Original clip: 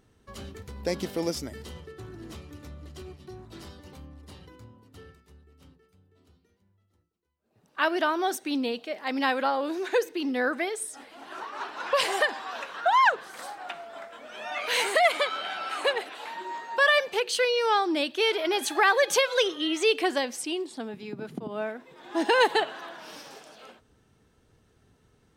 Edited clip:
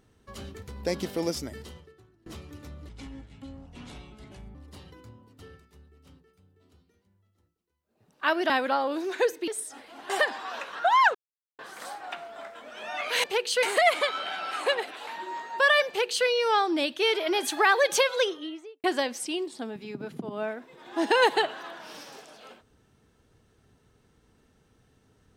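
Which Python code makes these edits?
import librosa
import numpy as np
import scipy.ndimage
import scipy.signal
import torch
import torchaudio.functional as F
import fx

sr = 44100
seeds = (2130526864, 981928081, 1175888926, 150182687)

y = fx.studio_fade_out(x, sr, start_s=19.24, length_s=0.78)
y = fx.edit(y, sr, fx.fade_out_to(start_s=1.58, length_s=0.68, curve='qua', floor_db=-24.0),
    fx.speed_span(start_s=2.89, length_s=1.21, speed=0.73),
    fx.cut(start_s=8.05, length_s=1.18),
    fx.cut(start_s=10.21, length_s=0.5),
    fx.cut(start_s=11.33, length_s=0.78),
    fx.insert_silence(at_s=13.16, length_s=0.44),
    fx.duplicate(start_s=17.06, length_s=0.39, to_s=14.81), tone=tone)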